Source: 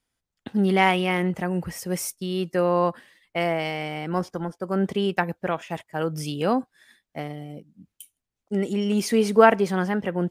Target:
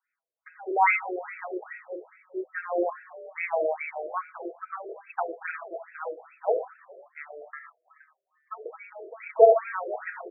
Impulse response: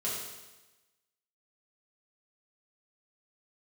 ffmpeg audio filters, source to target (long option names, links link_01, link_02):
-filter_complex "[0:a]aecho=1:1:6.2:0.7,asettb=1/sr,asplit=3[link_01][link_02][link_03];[link_01]atrim=end=5.534[link_04];[link_02]atrim=start=5.53:end=6.33,asetpts=PTS-STARTPTS,afade=type=in:duration=0.004:curve=qsin,afade=type=out:start_time=0.796:duration=0.004:curve=qsin,aeval=exprs='(tanh(6.31*val(0)+0.35)-tanh(0.35))/6.31':channel_layout=same[link_05];[link_03]atrim=start=6.326[link_06];[link_04][link_05]acrossfade=duration=0.004:curve1=hsin:curve2=qsin[link_07];[link_07][link_06]acrossfade=duration=0.004:curve1=qsin:curve2=hsin,asplit=5[link_08][link_09][link_10][link_11][link_12];[link_09]adelay=230,afreqshift=32,volume=-18.5dB[link_13];[link_10]adelay=460,afreqshift=64,volume=-24dB[link_14];[link_11]adelay=690,afreqshift=96,volume=-29.5dB[link_15];[link_12]adelay=920,afreqshift=128,volume=-35dB[link_16];[link_08][link_13][link_14][link_15][link_16]amix=inputs=5:normalize=0,asettb=1/sr,asplit=3[link_17][link_18][link_19];[link_17]atrim=end=7.534[link_20];[link_18]atrim=start=7.53:end=8.66,asetpts=PTS-STARTPTS,afade=type=in:duration=0.004:curve=qsin,afade=type=out:start_time=1.126:duration=0.004:curve=qsin,aeval=exprs='val(0)*sin(2*PI*1500*n/s)':channel_layout=same[link_21];[link_19]atrim=start=8.656[link_22];[link_20][link_21]acrossfade=duration=0.004:curve1=hsin:curve2=qsin[link_23];[link_23][link_22]acrossfade=duration=0.004:curve1=qsin:curve2=hsin,asplit=2[link_24][link_25];[1:a]atrim=start_sample=2205,afade=type=out:start_time=0.17:duration=0.01,atrim=end_sample=7938,highshelf=frequency=2300:gain=11[link_26];[link_25][link_26]afir=irnorm=-1:irlink=0,volume=-10dB[link_27];[link_24][link_27]amix=inputs=2:normalize=0,afftfilt=real='re*between(b*sr/1024,470*pow(1900/470,0.5+0.5*sin(2*PI*2.4*pts/sr))/1.41,470*pow(1900/470,0.5+0.5*sin(2*PI*2.4*pts/sr))*1.41)':imag='im*between(b*sr/1024,470*pow(1900/470,0.5+0.5*sin(2*PI*2.4*pts/sr))/1.41,470*pow(1900/470,0.5+0.5*sin(2*PI*2.4*pts/sr))*1.41)':win_size=1024:overlap=0.75,volume=-2.5dB"